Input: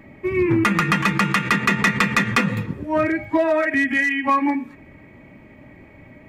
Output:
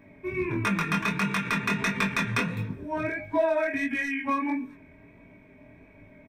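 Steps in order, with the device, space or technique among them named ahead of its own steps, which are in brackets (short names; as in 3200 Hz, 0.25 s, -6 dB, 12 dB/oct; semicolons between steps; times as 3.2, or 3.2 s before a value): ripple EQ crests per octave 1.6, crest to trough 9 dB; double-tracked vocal (doubler 20 ms -13 dB; chorus 1.5 Hz, delay 20 ms, depth 5.1 ms); gain -5.5 dB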